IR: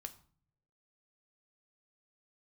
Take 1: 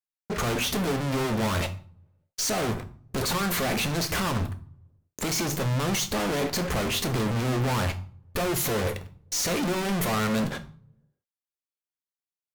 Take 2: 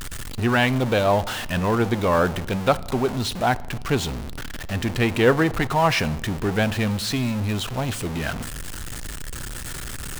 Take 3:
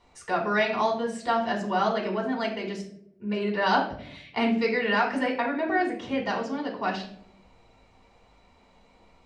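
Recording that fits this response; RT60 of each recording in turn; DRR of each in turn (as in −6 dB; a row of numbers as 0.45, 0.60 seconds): 1; 0.55, 1.8, 0.70 seconds; 7.5, 17.0, −1.0 decibels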